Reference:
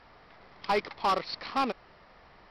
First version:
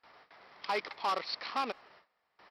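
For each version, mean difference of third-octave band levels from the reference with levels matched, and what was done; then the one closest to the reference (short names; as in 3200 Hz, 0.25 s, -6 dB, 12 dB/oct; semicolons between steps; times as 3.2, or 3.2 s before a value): 5.0 dB: HPF 630 Hz 6 dB/oct; gate with hold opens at -48 dBFS; limiter -22.5 dBFS, peak gain reduction 5 dB; speakerphone echo 0.17 s, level -29 dB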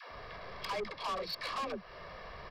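9.5 dB: comb 1.8 ms, depth 53%; compressor 3:1, threshold -41 dBFS, peak gain reduction 15 dB; dispersion lows, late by 0.12 s, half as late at 330 Hz; soft clip -39.5 dBFS, distortion -9 dB; gain +7.5 dB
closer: first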